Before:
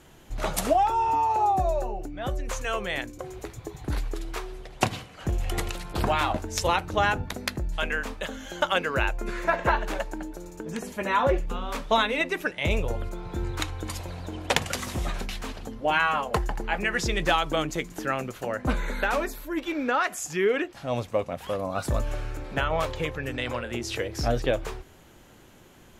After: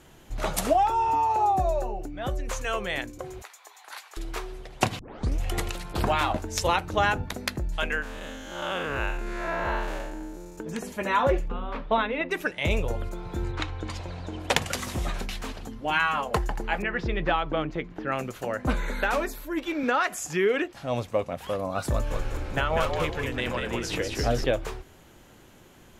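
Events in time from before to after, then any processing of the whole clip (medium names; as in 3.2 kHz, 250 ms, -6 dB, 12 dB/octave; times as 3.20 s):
3.42–4.17 s: high-pass 810 Hz 24 dB/octave
4.99 s: tape start 0.41 s
8.02–10.58 s: spectral blur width 171 ms
11.48–12.31 s: distance through air 370 m
13.51–14.38 s: low-pass 3.6 kHz -> 7.5 kHz
15.67–16.18 s: peaking EQ 560 Hz -7.5 dB 0.83 oct
16.82–18.12 s: distance through air 350 m
19.83–20.68 s: three bands compressed up and down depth 40%
21.91–24.44 s: frequency-shifting echo 194 ms, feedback 36%, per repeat -58 Hz, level -4 dB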